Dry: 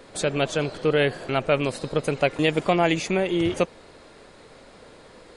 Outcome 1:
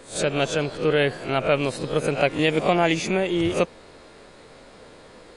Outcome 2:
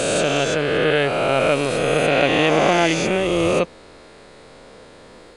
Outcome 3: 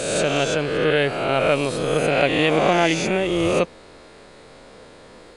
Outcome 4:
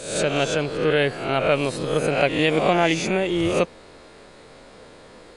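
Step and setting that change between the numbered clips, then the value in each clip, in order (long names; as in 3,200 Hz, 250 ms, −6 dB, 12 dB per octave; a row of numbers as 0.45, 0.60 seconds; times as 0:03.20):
peak hold with a rise ahead of every peak, rising 60 dB in: 0.31, 3.05, 1.47, 0.7 seconds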